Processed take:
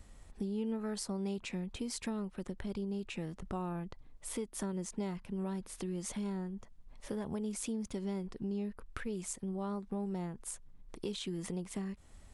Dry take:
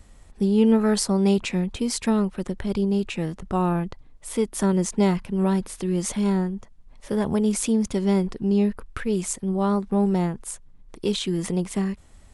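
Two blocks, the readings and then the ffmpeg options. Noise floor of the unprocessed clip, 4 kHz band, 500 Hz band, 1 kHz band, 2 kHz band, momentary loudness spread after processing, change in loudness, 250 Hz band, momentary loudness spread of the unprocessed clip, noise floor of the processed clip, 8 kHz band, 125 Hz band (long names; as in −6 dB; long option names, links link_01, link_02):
−50 dBFS, −13.5 dB, −16.0 dB, −16.0 dB, −13.5 dB, 7 LU, −16.0 dB, −16.0 dB, 9 LU, −57 dBFS, −12.5 dB, −15.5 dB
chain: -af "acompressor=threshold=-33dB:ratio=3,volume=-5.5dB"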